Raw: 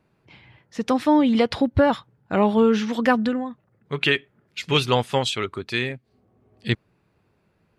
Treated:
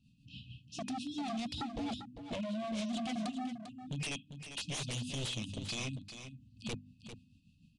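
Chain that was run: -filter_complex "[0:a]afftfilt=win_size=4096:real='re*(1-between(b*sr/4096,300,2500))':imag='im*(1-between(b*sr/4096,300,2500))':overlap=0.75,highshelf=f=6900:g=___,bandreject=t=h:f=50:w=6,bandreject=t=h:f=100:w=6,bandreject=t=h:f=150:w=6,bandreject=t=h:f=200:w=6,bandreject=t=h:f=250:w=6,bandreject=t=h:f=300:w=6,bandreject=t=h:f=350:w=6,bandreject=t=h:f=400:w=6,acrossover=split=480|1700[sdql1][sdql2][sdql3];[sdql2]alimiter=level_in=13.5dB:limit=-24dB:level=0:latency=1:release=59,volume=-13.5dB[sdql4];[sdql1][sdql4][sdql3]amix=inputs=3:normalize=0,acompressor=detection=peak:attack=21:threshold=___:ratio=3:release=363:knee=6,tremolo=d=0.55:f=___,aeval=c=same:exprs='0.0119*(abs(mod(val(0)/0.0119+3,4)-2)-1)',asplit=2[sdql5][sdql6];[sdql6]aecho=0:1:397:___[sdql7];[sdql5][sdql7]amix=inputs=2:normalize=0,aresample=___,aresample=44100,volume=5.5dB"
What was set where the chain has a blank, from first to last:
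-3.5, -37dB, 6.6, 0.316, 22050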